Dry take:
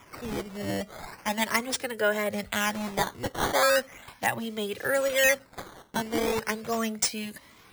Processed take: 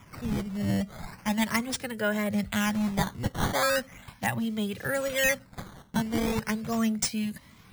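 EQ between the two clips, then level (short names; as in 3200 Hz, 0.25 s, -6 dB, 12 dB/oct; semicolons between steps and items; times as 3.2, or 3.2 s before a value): resonant low shelf 260 Hz +9 dB, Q 1.5; -2.5 dB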